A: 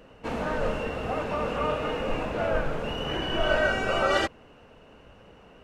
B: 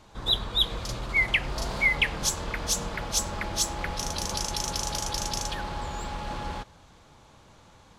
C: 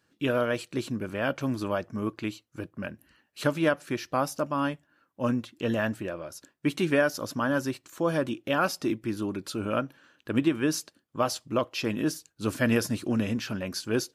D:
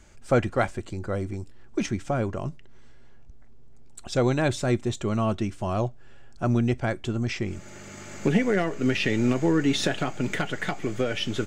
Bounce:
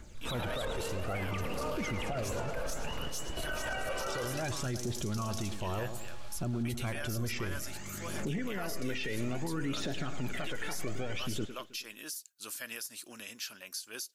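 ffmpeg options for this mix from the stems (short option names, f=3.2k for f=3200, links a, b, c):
-filter_complex "[0:a]volume=-9dB,asplit=2[a][b];[b]volume=-6.5dB[c];[1:a]volume=-6.5dB,asplit=2[d][e];[e]volume=-19.5dB[f];[2:a]volume=3dB,asplit=2[g][h];[3:a]alimiter=limit=-19dB:level=0:latency=1:release=223,volume=-3dB,asplit=2[i][j];[j]volume=-14.5dB[k];[h]apad=whole_len=248388[l];[a][l]sidechaingate=range=-33dB:threshold=-52dB:ratio=16:detection=peak[m];[m][i]amix=inputs=2:normalize=0,aphaser=in_gain=1:out_gain=1:delay=2.3:decay=0.57:speed=0.61:type=triangular,acompressor=threshold=-27dB:ratio=6,volume=0dB[n];[d][g]amix=inputs=2:normalize=0,aderivative,alimiter=level_in=4dB:limit=-24dB:level=0:latency=1:release=179,volume=-4dB,volume=0dB[o];[c][f][k]amix=inputs=3:normalize=0,aecho=0:1:106|212|318|424|530|636|742:1|0.5|0.25|0.125|0.0625|0.0312|0.0156[p];[n][o][p]amix=inputs=3:normalize=0,alimiter=level_in=3dB:limit=-24dB:level=0:latency=1:release=11,volume=-3dB"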